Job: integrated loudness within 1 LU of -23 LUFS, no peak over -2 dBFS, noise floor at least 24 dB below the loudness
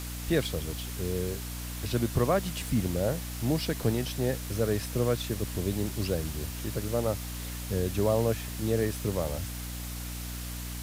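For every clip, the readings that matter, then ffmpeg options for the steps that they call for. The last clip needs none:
hum 60 Hz; harmonics up to 300 Hz; hum level -36 dBFS; noise floor -37 dBFS; noise floor target -55 dBFS; loudness -30.5 LUFS; peak -13.0 dBFS; loudness target -23.0 LUFS
-> -af "bandreject=f=60:t=h:w=6,bandreject=f=120:t=h:w=6,bandreject=f=180:t=h:w=6,bandreject=f=240:t=h:w=6,bandreject=f=300:t=h:w=6"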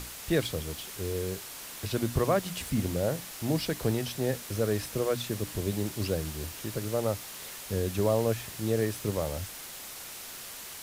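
hum none; noise floor -43 dBFS; noise floor target -56 dBFS
-> -af "afftdn=nr=13:nf=-43"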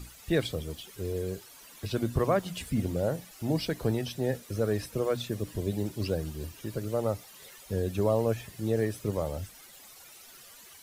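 noise floor -52 dBFS; noise floor target -56 dBFS
-> -af "afftdn=nr=6:nf=-52"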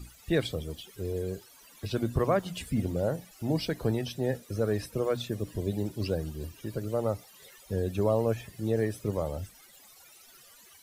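noise floor -55 dBFS; noise floor target -56 dBFS
-> -af "afftdn=nr=6:nf=-55"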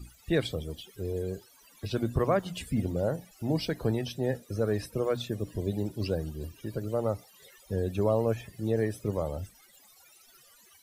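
noise floor -59 dBFS; loudness -31.5 LUFS; peak -14.0 dBFS; loudness target -23.0 LUFS
-> -af "volume=8.5dB"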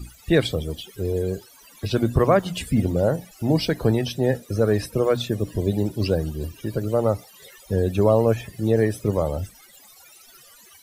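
loudness -23.0 LUFS; peak -5.5 dBFS; noise floor -50 dBFS

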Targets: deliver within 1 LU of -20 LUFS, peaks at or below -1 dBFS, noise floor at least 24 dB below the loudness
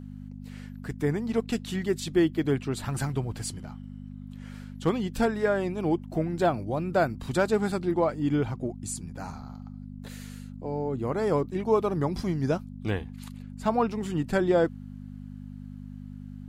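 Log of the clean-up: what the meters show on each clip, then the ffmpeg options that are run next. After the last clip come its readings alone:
hum 50 Hz; harmonics up to 250 Hz; hum level -39 dBFS; loudness -28.0 LUFS; peak -11.5 dBFS; loudness target -20.0 LUFS
-> -af "bandreject=f=50:t=h:w=4,bandreject=f=100:t=h:w=4,bandreject=f=150:t=h:w=4,bandreject=f=200:t=h:w=4,bandreject=f=250:t=h:w=4"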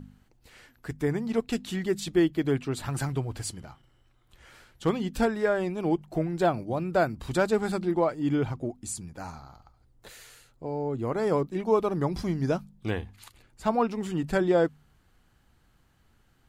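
hum none; loudness -28.5 LUFS; peak -11.5 dBFS; loudness target -20.0 LUFS
-> -af "volume=8.5dB"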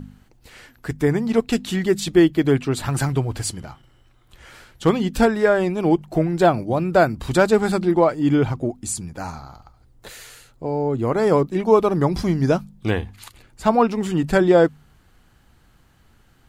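loudness -20.0 LUFS; peak -3.0 dBFS; noise floor -56 dBFS

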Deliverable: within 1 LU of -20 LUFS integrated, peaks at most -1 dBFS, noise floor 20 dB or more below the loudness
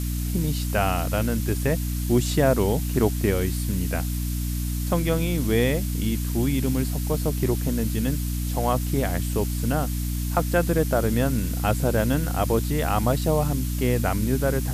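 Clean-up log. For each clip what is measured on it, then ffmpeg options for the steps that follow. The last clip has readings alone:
hum 60 Hz; harmonics up to 300 Hz; hum level -24 dBFS; noise floor -27 dBFS; noise floor target -44 dBFS; loudness -24.0 LUFS; peak -7.0 dBFS; loudness target -20.0 LUFS
-> -af "bandreject=f=60:t=h:w=6,bandreject=f=120:t=h:w=6,bandreject=f=180:t=h:w=6,bandreject=f=240:t=h:w=6,bandreject=f=300:t=h:w=6"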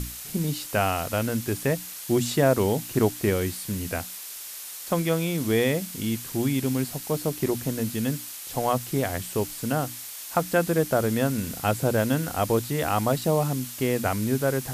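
hum none; noise floor -39 dBFS; noise floor target -46 dBFS
-> -af "afftdn=nr=7:nf=-39"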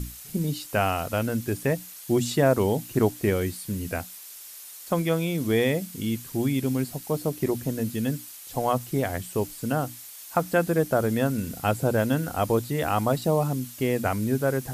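noise floor -43 dBFS; noise floor target -47 dBFS
-> -af "afftdn=nr=6:nf=-43"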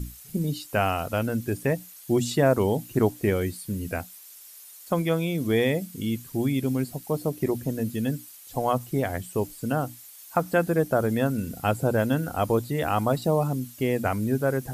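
noise floor -47 dBFS; loudness -26.5 LUFS; peak -8.5 dBFS; loudness target -20.0 LUFS
-> -af "volume=6.5dB"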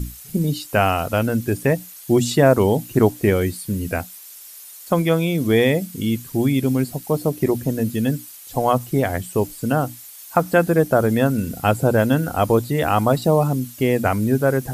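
loudness -20.0 LUFS; peak -2.0 dBFS; noise floor -41 dBFS

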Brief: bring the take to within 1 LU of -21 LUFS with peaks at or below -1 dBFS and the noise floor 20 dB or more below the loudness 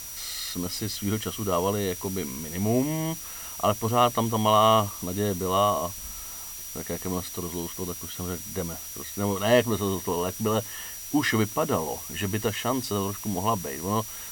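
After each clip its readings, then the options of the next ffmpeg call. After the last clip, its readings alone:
steady tone 5800 Hz; tone level -41 dBFS; noise floor -39 dBFS; noise floor target -47 dBFS; loudness -27.0 LUFS; peak -8.5 dBFS; loudness target -21.0 LUFS
-> -af "bandreject=f=5.8k:w=30"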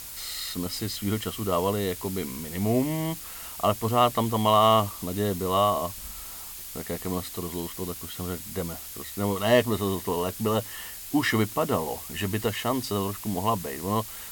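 steady tone none; noise floor -40 dBFS; noise floor target -47 dBFS
-> -af "afftdn=nr=7:nf=-40"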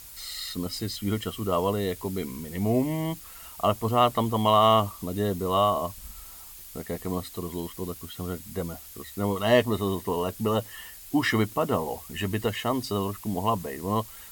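noise floor -45 dBFS; noise floor target -47 dBFS
-> -af "afftdn=nr=6:nf=-45"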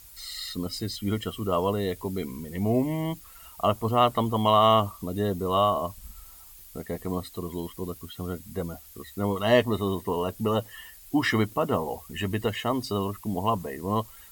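noise floor -49 dBFS; loudness -27.5 LUFS; peak -8.5 dBFS; loudness target -21.0 LUFS
-> -af "volume=6.5dB"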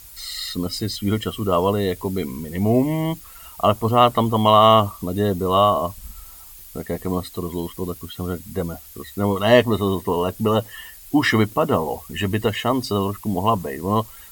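loudness -21.0 LUFS; peak -2.0 dBFS; noise floor -43 dBFS

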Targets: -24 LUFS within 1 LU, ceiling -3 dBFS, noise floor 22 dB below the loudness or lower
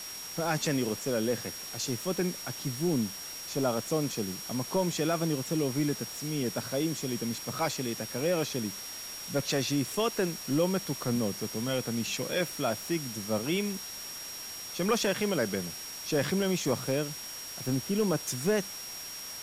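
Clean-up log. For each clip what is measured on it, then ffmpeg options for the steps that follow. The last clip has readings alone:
steady tone 5600 Hz; tone level -41 dBFS; noise floor -41 dBFS; noise floor target -53 dBFS; loudness -31.0 LUFS; peak -15.5 dBFS; loudness target -24.0 LUFS
-> -af "bandreject=f=5.6k:w=30"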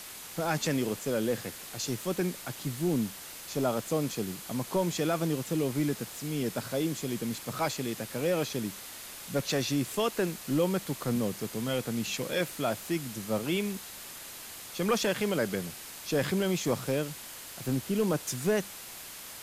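steady tone none; noise floor -45 dBFS; noise floor target -54 dBFS
-> -af "afftdn=nr=9:nf=-45"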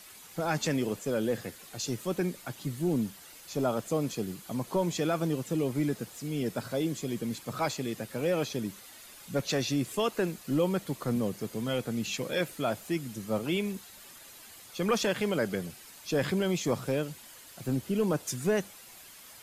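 noise floor -51 dBFS; noise floor target -54 dBFS
-> -af "afftdn=nr=6:nf=-51"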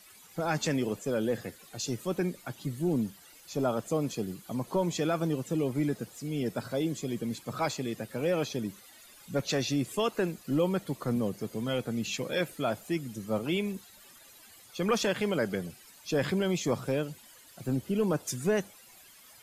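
noise floor -55 dBFS; loudness -31.5 LUFS; peak -15.5 dBFS; loudness target -24.0 LUFS
-> -af "volume=7.5dB"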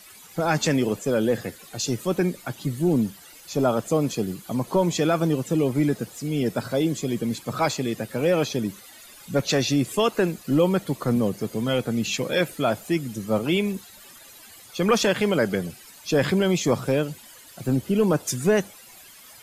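loudness -24.0 LUFS; peak -8.0 dBFS; noise floor -47 dBFS

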